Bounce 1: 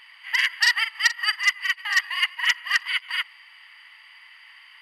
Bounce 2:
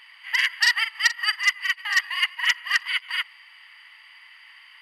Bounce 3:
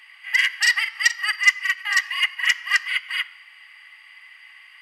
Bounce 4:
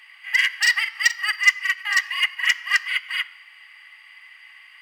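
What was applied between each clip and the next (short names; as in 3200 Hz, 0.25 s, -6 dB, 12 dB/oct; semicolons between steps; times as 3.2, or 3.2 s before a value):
low shelf 480 Hz -3 dB
reverb RT60 1.1 s, pre-delay 3 ms, DRR 13 dB; gain +1 dB
median filter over 3 samples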